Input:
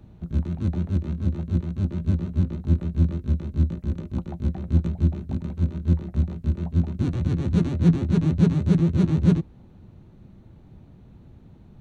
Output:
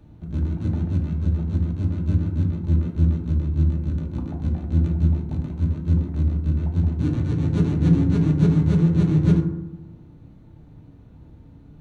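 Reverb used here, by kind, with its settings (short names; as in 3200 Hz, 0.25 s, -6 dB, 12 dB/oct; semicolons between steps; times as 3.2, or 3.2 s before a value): FDN reverb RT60 0.94 s, low-frequency decay 1.3×, high-frequency decay 0.4×, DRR 1 dB; gain -2 dB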